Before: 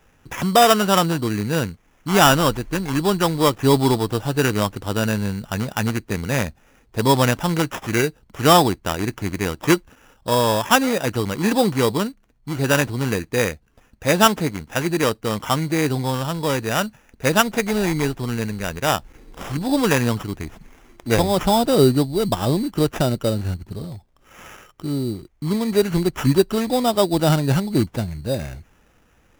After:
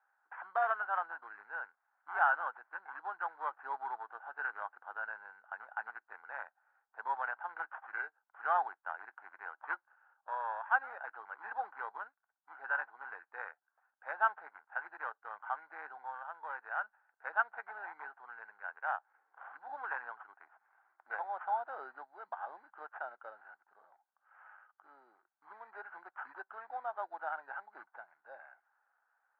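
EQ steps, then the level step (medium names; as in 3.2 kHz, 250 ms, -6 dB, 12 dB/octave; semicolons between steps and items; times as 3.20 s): ladder high-pass 740 Hz, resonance 70%; four-pole ladder low-pass 1.6 kHz, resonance 80%; -3.5 dB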